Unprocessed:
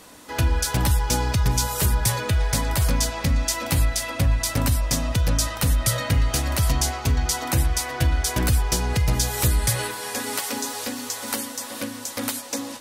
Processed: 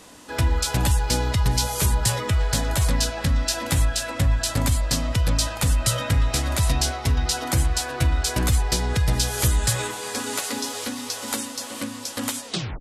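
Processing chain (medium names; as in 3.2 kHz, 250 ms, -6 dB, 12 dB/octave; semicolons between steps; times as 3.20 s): tape stop on the ending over 0.34 s; formant shift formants -3 st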